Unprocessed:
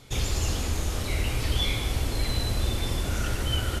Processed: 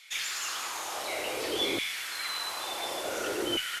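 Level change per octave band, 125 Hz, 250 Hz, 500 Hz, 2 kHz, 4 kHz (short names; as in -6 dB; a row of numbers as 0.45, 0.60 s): -28.5, -4.5, +1.0, +1.5, 0.0 dB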